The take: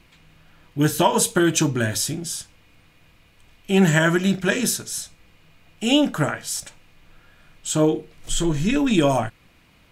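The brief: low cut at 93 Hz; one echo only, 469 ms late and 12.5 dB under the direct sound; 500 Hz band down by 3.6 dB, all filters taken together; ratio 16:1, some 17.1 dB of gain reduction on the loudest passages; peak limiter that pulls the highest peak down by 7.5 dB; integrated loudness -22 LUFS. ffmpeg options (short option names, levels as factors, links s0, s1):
-af "highpass=93,equalizer=f=500:t=o:g=-5,acompressor=threshold=0.0282:ratio=16,alimiter=level_in=1.5:limit=0.0631:level=0:latency=1,volume=0.668,aecho=1:1:469:0.237,volume=5.96"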